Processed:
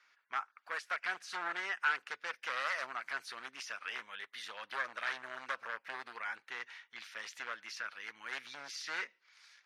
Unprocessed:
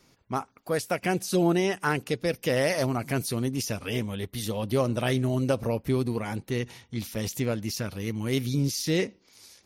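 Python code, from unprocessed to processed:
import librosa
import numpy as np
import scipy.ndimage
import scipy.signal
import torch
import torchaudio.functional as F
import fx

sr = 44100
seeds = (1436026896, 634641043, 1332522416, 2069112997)

y = np.minimum(x, 2.0 * 10.0 ** (-22.5 / 20.0) - x)
y = fx.ladder_bandpass(y, sr, hz=1800.0, resonance_pct=50)
y = fx.dynamic_eq(y, sr, hz=2800.0, q=0.81, threshold_db=-52.0, ratio=4.0, max_db=-3)
y = F.gain(torch.from_numpy(y), 9.0).numpy()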